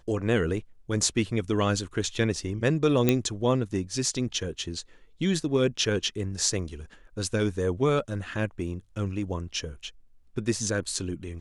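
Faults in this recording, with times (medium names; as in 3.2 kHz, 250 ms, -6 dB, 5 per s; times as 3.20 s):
3.09 s: pop -7 dBFS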